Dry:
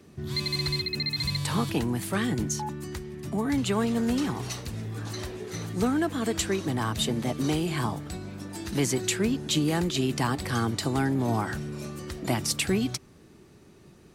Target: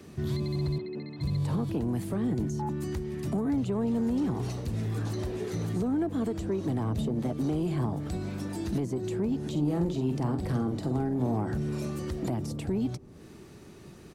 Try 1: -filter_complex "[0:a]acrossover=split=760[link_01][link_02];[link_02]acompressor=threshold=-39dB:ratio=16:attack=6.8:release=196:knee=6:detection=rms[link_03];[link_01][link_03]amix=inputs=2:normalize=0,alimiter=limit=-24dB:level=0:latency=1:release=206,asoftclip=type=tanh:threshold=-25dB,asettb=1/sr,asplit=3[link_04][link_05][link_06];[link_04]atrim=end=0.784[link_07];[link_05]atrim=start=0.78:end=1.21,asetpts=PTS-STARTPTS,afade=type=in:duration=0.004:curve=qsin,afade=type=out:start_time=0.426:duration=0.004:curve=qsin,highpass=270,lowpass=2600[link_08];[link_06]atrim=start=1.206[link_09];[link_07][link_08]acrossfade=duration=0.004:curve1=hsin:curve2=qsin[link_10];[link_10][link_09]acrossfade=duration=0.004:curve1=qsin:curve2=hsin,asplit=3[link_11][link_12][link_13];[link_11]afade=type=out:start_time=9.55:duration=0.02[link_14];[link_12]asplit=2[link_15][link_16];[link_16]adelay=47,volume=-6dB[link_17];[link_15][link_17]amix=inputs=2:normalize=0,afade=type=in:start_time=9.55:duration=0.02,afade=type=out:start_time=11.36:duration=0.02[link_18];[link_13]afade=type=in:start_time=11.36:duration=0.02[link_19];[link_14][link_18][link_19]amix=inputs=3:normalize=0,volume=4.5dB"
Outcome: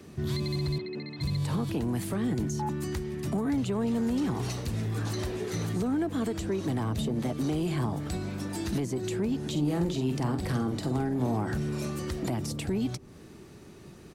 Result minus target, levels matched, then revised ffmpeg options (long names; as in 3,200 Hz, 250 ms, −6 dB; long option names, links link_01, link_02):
downward compressor: peak gain reduction −7.5 dB
-filter_complex "[0:a]acrossover=split=760[link_01][link_02];[link_02]acompressor=threshold=-47dB:ratio=16:attack=6.8:release=196:knee=6:detection=rms[link_03];[link_01][link_03]amix=inputs=2:normalize=0,alimiter=limit=-24dB:level=0:latency=1:release=206,asoftclip=type=tanh:threshold=-25dB,asettb=1/sr,asplit=3[link_04][link_05][link_06];[link_04]atrim=end=0.784[link_07];[link_05]atrim=start=0.78:end=1.21,asetpts=PTS-STARTPTS,afade=type=in:duration=0.004:curve=qsin,afade=type=out:start_time=0.426:duration=0.004:curve=qsin,highpass=270,lowpass=2600[link_08];[link_06]atrim=start=1.206[link_09];[link_07][link_08]acrossfade=duration=0.004:curve1=hsin:curve2=qsin[link_10];[link_10][link_09]acrossfade=duration=0.004:curve1=qsin:curve2=hsin,asplit=3[link_11][link_12][link_13];[link_11]afade=type=out:start_time=9.55:duration=0.02[link_14];[link_12]asplit=2[link_15][link_16];[link_16]adelay=47,volume=-6dB[link_17];[link_15][link_17]amix=inputs=2:normalize=0,afade=type=in:start_time=9.55:duration=0.02,afade=type=out:start_time=11.36:duration=0.02[link_18];[link_13]afade=type=in:start_time=11.36:duration=0.02[link_19];[link_14][link_18][link_19]amix=inputs=3:normalize=0,volume=4.5dB"